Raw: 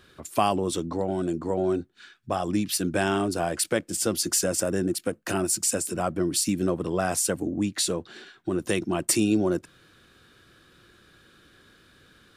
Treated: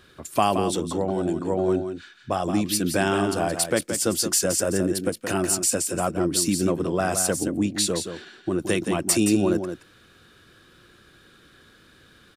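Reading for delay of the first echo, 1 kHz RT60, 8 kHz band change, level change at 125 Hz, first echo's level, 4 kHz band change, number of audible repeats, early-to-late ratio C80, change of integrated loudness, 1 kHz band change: 172 ms, no reverb, +2.5 dB, +2.5 dB, -8.0 dB, +2.5 dB, 1, no reverb, +2.5 dB, +2.5 dB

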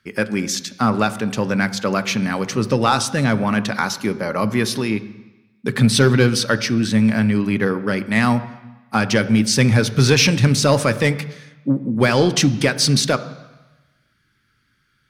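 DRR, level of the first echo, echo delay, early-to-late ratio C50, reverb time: 11.5 dB, no echo, no echo, 15.0 dB, 1.1 s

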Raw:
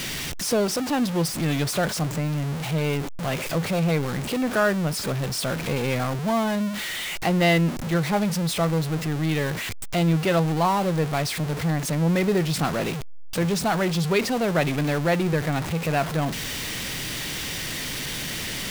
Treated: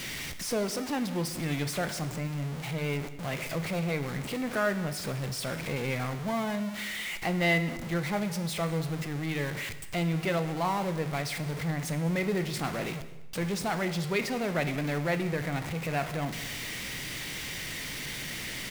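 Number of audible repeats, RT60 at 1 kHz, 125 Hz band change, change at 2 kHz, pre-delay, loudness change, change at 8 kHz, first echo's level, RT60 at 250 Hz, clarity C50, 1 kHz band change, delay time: 1, 1.0 s, -7.5 dB, -4.5 dB, 12 ms, -7.0 dB, -7.5 dB, -21.0 dB, 1.1 s, 12.0 dB, -7.5 dB, 198 ms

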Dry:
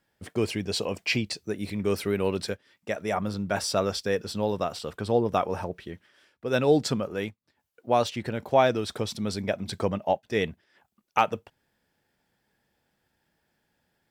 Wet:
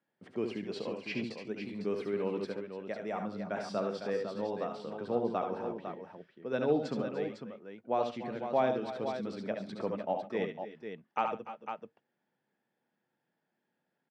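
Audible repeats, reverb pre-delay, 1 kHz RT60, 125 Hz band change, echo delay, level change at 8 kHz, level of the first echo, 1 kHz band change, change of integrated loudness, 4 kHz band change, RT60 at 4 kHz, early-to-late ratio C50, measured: 4, no reverb, no reverb, -12.5 dB, 69 ms, under -20 dB, -7.0 dB, -7.5 dB, -8.0 dB, -15.0 dB, no reverb, no reverb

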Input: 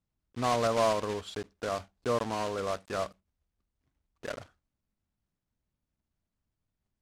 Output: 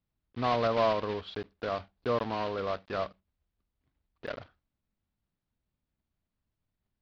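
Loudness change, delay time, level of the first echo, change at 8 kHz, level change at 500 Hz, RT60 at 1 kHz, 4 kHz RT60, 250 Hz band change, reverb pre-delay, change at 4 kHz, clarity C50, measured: 0.0 dB, no echo, no echo, under -15 dB, 0.0 dB, no reverb, no reverb, 0.0 dB, no reverb, -1.0 dB, no reverb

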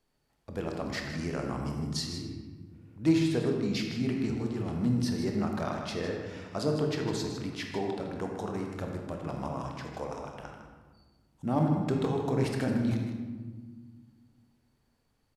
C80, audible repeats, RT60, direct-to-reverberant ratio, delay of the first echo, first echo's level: 4.0 dB, 1, 1.5 s, 1.0 dB, 156 ms, -10.5 dB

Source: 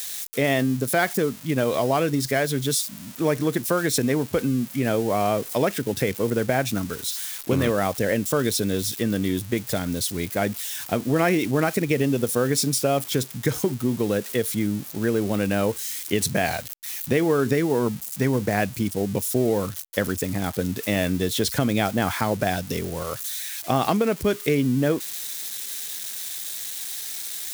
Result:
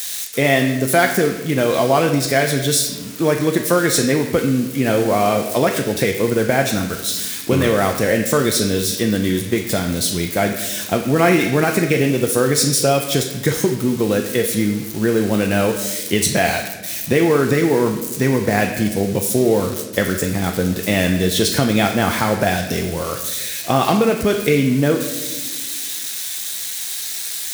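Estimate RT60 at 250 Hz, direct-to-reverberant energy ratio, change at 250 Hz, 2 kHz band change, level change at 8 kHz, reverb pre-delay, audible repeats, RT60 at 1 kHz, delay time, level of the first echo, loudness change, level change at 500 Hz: 2.1 s, 2.0 dB, +5.5 dB, +7.5 dB, +7.0 dB, 6 ms, no echo, 0.90 s, no echo, no echo, +6.0 dB, +6.0 dB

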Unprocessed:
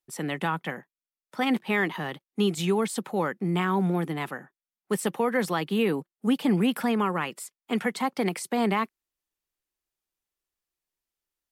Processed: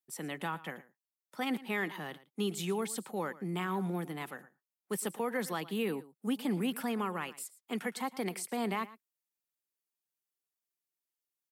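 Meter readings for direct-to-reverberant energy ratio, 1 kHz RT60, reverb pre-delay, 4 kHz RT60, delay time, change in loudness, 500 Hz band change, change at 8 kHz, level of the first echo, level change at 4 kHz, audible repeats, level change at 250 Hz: no reverb, no reverb, no reverb, no reverb, 113 ms, -9.0 dB, -9.0 dB, -3.5 dB, -18.0 dB, -7.5 dB, 1, -9.5 dB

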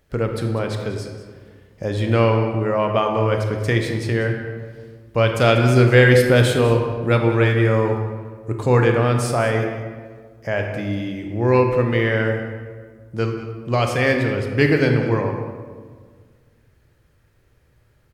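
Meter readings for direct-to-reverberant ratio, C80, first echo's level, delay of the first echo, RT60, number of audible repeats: 3.0 dB, 6.0 dB, -13.5 dB, 194 ms, 1.7 s, 1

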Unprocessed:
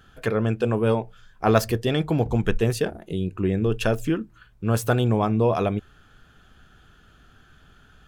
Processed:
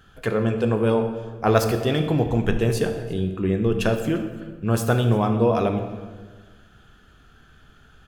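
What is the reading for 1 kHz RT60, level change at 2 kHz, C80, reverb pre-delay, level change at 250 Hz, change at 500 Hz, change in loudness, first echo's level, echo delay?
1.3 s, +0.5 dB, 9.0 dB, 14 ms, +1.5 dB, +1.5 dB, +1.0 dB, -23.5 dB, 346 ms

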